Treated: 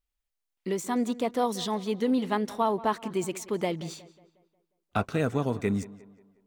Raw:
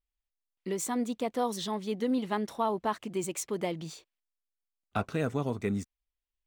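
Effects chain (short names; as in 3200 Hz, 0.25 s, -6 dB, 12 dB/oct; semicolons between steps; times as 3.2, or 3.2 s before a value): de-esser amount 70%; on a send: tape echo 0.18 s, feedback 48%, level -17 dB, low-pass 3000 Hz; on the sum: gain +3.5 dB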